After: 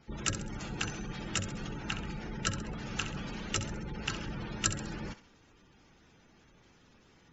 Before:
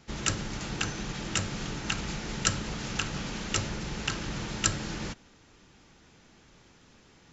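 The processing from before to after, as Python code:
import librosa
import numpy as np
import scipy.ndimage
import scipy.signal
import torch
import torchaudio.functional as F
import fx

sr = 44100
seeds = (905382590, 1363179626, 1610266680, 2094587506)

y = fx.spec_gate(x, sr, threshold_db=-20, keep='strong')
y = fx.high_shelf(y, sr, hz=5800.0, db=-9.0, at=(1.74, 2.91))
y = fx.echo_thinned(y, sr, ms=66, feedback_pct=42, hz=880.0, wet_db=-11)
y = y * librosa.db_to_amplitude(-3.5)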